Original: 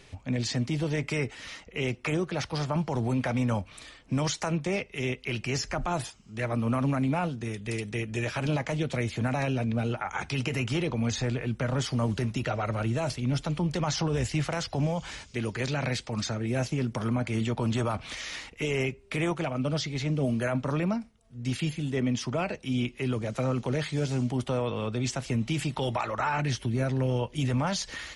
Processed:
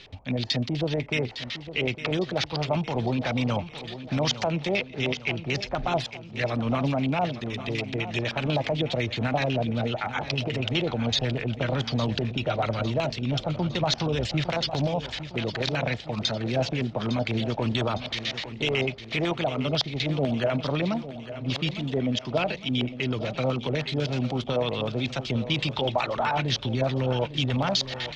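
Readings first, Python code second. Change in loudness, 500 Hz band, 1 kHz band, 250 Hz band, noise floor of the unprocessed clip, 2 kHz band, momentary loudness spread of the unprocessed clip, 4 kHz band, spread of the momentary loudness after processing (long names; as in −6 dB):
+2.5 dB, +4.0 dB, +3.0 dB, +1.0 dB, −53 dBFS, +3.5 dB, 5 LU, +8.0 dB, 4 LU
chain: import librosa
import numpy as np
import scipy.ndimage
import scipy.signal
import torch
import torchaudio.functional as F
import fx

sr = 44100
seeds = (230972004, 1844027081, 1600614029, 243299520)

y = scipy.signal.sosfilt(scipy.signal.butter(2, 6300.0, 'lowpass', fs=sr, output='sos'), x)
y = fx.high_shelf(y, sr, hz=3500.0, db=12.0)
y = fx.filter_lfo_lowpass(y, sr, shape='square', hz=8.0, low_hz=710.0, high_hz=3700.0, q=2.4)
y = fx.echo_feedback(y, sr, ms=857, feedback_pct=51, wet_db=-13)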